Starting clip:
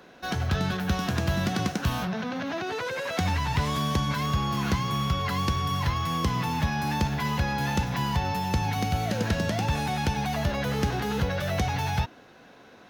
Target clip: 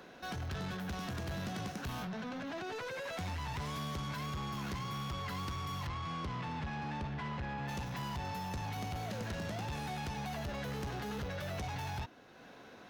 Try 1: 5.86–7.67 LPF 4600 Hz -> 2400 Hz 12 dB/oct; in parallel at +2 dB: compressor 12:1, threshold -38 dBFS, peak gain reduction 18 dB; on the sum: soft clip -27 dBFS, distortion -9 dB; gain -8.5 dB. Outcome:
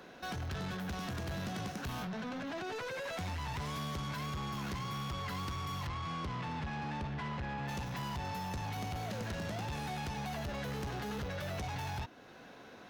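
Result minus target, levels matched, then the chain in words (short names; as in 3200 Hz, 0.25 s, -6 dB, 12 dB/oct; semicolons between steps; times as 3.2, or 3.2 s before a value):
compressor: peak gain reduction -10 dB
5.86–7.67 LPF 4600 Hz -> 2400 Hz 12 dB/oct; in parallel at +2 dB: compressor 12:1, threshold -49 dBFS, peak gain reduction 28 dB; on the sum: soft clip -27 dBFS, distortion -10 dB; gain -8.5 dB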